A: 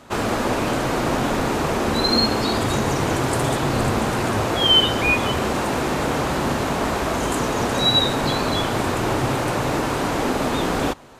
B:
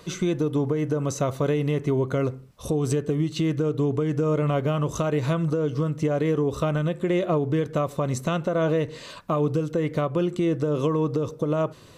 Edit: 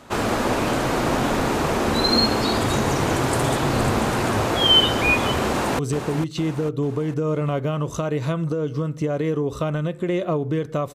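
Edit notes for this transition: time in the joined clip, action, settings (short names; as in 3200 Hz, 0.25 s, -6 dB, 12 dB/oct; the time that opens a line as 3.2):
A
5.47–5.79 echo throw 0.45 s, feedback 45%, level -8.5 dB
5.79 switch to B from 2.8 s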